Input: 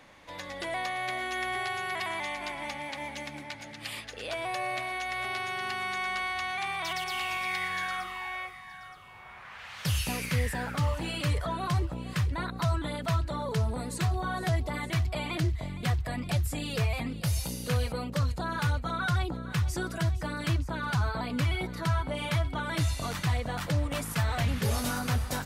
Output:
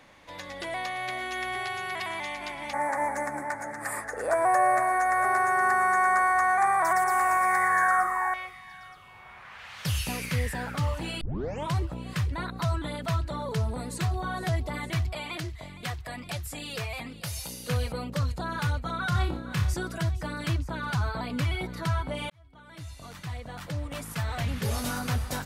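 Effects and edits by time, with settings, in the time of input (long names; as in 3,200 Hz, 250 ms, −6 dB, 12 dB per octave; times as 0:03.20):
0:02.73–0:08.34: drawn EQ curve 180 Hz 0 dB, 280 Hz +5 dB, 450 Hz +9 dB, 820 Hz +13 dB, 1,800 Hz +12 dB, 3,000 Hz −25 dB, 4,300 Hz −13 dB, 8,200 Hz +12 dB, 12,000 Hz +7 dB
0:11.21: tape start 0.52 s
0:15.13–0:17.69: low-shelf EQ 380 Hz −9.5 dB
0:19.09–0:19.74: flutter between parallel walls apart 5 metres, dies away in 0.33 s
0:22.30–0:24.96: fade in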